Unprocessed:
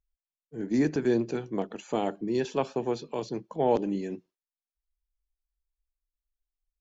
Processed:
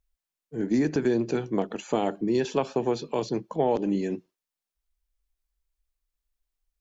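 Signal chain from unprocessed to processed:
downward compressor, threshold −25 dBFS, peak gain reduction 7 dB
level +5.5 dB

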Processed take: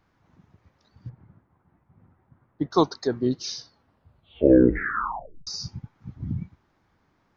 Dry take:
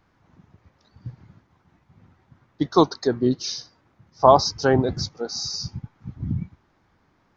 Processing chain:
0:01.09–0:02.71: low-pass filter 1,500 Hz 12 dB per octave
0:03.58: tape stop 1.89 s
level −3.5 dB

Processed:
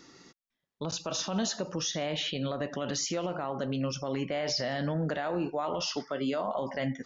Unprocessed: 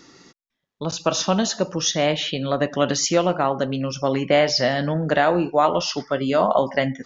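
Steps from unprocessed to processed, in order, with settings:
0:05.96–0:06.47: high-pass filter 170 Hz
brickwall limiter −17 dBFS, peak gain reduction 11.5 dB
level −5.5 dB

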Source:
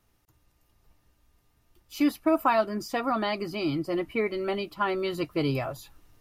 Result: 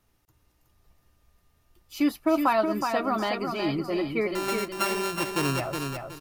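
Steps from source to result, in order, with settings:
0:04.35–0:05.60: samples sorted by size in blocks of 32 samples
repeating echo 369 ms, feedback 29%, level −5.5 dB

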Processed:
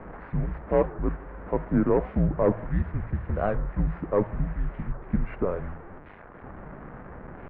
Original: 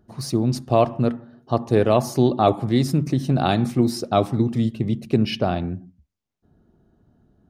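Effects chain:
linear delta modulator 32 kbit/s, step −28.5 dBFS
mains-hum notches 50/100/150/200/250/300/350 Hz
single-sideband voice off tune −190 Hz 190–2,000 Hz
wow of a warped record 45 rpm, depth 250 cents
level −3.5 dB

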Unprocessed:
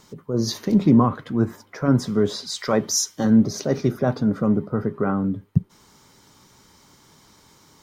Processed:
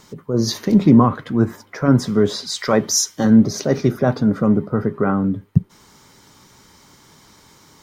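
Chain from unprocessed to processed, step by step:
parametric band 1,900 Hz +2 dB
level +4 dB

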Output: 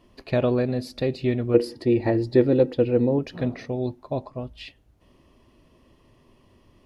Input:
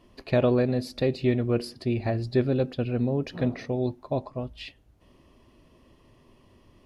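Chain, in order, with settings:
0:01.54–0:03.19: hollow resonant body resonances 330/480/880/1,900 Hz, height 14 dB, ringing for 55 ms

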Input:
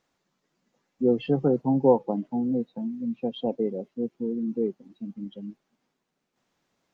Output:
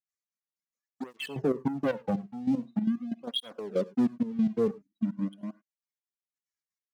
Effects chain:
spectral dynamics exaggerated over time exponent 1.5
0:04.67–0:05.41: elliptic band-stop filter 330–1,100 Hz
in parallel at −1 dB: downward compressor, threshold −30 dBFS, peak gain reduction 15 dB
on the sum: leveller curve on the samples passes 3
brickwall limiter −14 dBFS, peak gain reduction 7 dB
0:03.44–0:04.16: leveller curve on the samples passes 1
gate pattern ".xx.x..x" 188 BPM −12 dB
pitch vibrato 1.3 Hz 52 cents
0:02.19–0:02.86: double-tracking delay 47 ms −13 dB
on a send at −18.5 dB: convolution reverb, pre-delay 3 ms
on the sum: through-zero flanger with one copy inverted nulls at 0.44 Hz, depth 3.5 ms
level −4 dB

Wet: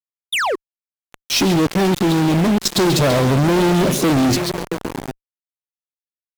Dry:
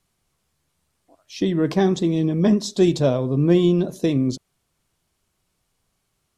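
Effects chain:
downward compressor 12 to 1, threshold −23 dBFS, peak gain reduction 12.5 dB
on a send: echo through a band-pass that steps 135 ms, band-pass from 3,300 Hz, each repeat −0.7 octaves, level −3.5 dB
0:01.43–0:02.76: on the sum: output level in coarse steps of 16 dB
in parallel at −10.5 dB: bit reduction 7 bits
0:00.32–0:00.56: on the sum: sound drawn into the spectrogram fall 320–4,000 Hz −38 dBFS
fuzz pedal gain 37 dB, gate −43 dBFS

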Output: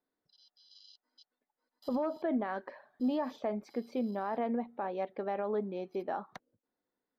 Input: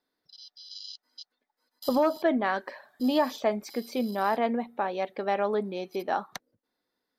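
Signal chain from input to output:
brickwall limiter −19.5 dBFS, peak gain reduction 6 dB
low-pass filter 1,100 Hz 6 dB per octave
level −3.5 dB

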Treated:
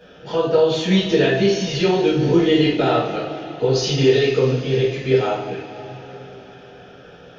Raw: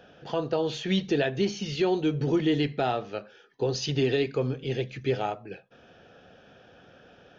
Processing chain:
coupled-rooms reverb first 0.54 s, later 4.7 s, from −18 dB, DRR −9 dB

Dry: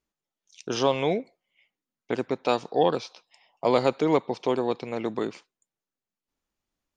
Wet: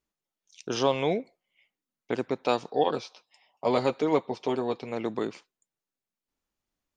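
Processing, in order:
0:02.70–0:04.91: notch comb filter 170 Hz
level −1.5 dB

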